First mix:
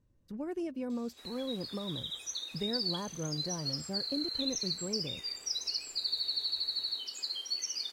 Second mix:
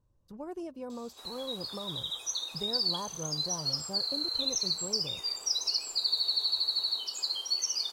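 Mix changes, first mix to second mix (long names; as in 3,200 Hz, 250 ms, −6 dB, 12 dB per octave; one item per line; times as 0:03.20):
background +6.0 dB
master: add octave-band graphic EQ 250/1,000/2,000 Hz −7/+7/−10 dB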